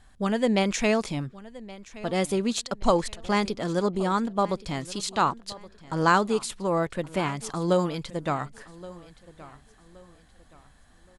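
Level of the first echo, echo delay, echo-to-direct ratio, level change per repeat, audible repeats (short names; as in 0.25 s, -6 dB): -19.0 dB, 1.122 s, -18.5 dB, -9.5 dB, 2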